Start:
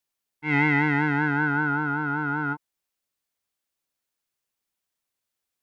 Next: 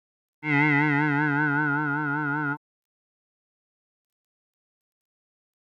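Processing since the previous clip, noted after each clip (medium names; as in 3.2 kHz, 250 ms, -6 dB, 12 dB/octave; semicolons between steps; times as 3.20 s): word length cut 12-bit, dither none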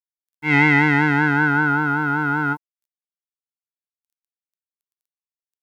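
treble shelf 4.2 kHz +9 dB; trim +5.5 dB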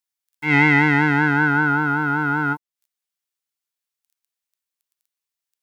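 tape noise reduction on one side only encoder only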